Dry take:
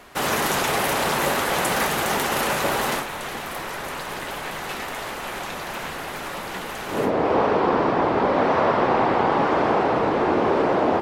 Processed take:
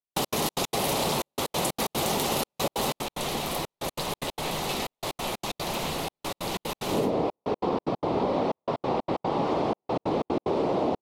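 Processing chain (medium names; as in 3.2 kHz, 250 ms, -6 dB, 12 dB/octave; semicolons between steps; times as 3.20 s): peaking EQ 1.7 kHz -3.5 dB 1.5 oct; compression, threshold -26 dBFS, peak gain reduction 10 dB; fifteen-band graphic EQ 160 Hz +3 dB, 1.6 kHz -11 dB, 4 kHz +4 dB; trance gate "..x.xx.x.xxxxxx" 185 bpm -60 dB; trim +3.5 dB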